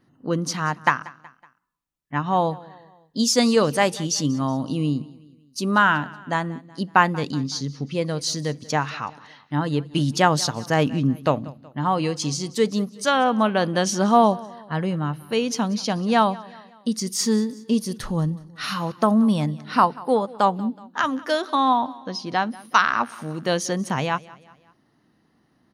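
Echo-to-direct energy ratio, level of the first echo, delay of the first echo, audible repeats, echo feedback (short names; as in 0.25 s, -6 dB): -20.0 dB, -21.0 dB, 0.186 s, 3, 47%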